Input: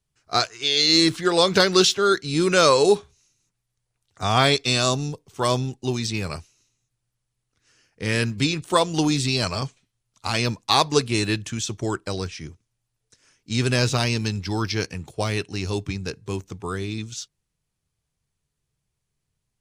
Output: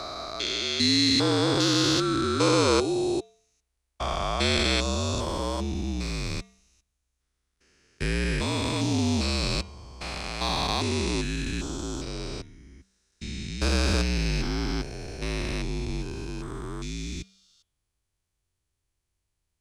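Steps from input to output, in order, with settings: spectrogram pixelated in time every 400 ms; de-hum 246.3 Hz, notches 16; frequency shift -54 Hz

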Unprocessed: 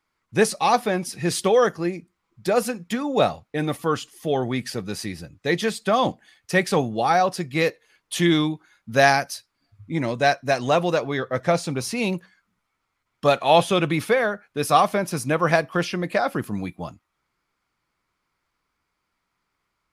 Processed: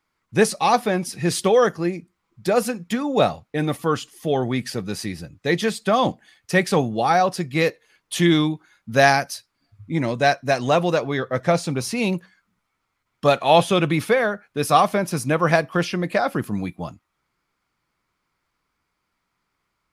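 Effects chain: peaking EQ 160 Hz +2 dB 1.7 oct; trim +1 dB

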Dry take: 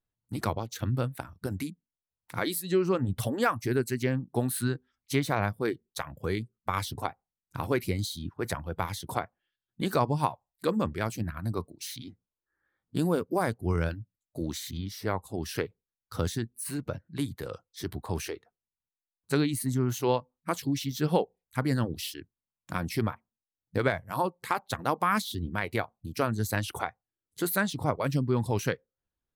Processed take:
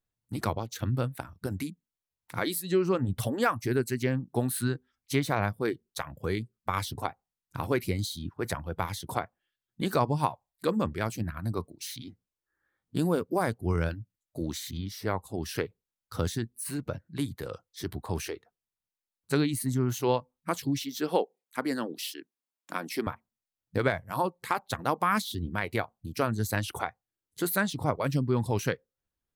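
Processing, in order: 20.81–23.07 s: high-pass 240 Hz 24 dB/octave

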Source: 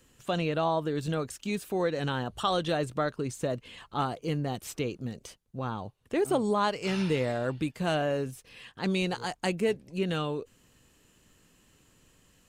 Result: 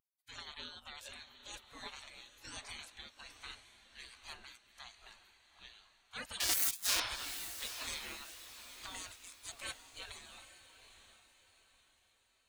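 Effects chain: 6.40–7.00 s: square wave that keeps the level; spectral gate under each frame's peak -30 dB weak; on a send: echo that smears into a reverb 834 ms, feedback 53%, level -7 dB; on the sum: spectral contrast expander 1.5:1; trim +5.5 dB

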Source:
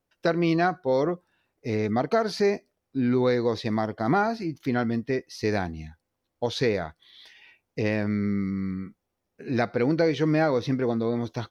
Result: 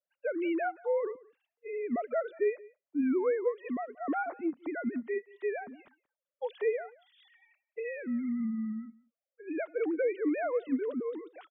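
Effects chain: formants replaced by sine waves; on a send: delay 179 ms -23 dB; on the sum: trim -7.5 dB

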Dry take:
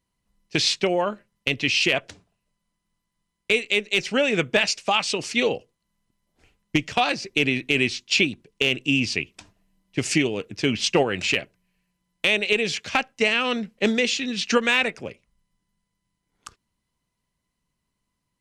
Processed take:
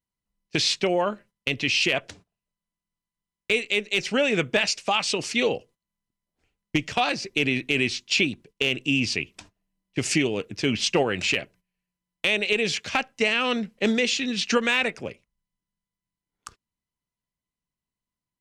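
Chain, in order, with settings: gate -49 dBFS, range -13 dB; in parallel at 0 dB: peak limiter -15.5 dBFS, peak gain reduction 8 dB; on the sum: trim -5.5 dB

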